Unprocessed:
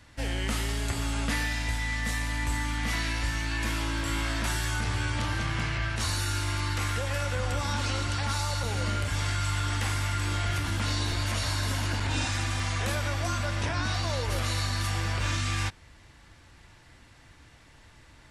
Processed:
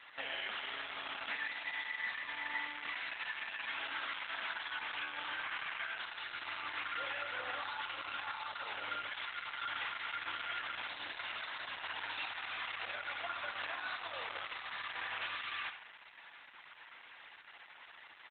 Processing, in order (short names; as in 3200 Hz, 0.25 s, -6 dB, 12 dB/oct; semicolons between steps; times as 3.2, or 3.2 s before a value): in parallel at +1.5 dB: limiter -27.5 dBFS, peak gain reduction 10.5 dB; on the sum: HPF 960 Hz 12 dB/oct; compressor 16:1, threshold -34 dBFS, peak gain reduction 10 dB; feedback echo 0.129 s, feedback 53%, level -17.5 dB; downsampling 8000 Hz; on a send: dark delay 71 ms, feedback 55%, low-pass 2900 Hz, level -8 dB; on the sum: Opus 8 kbps 48000 Hz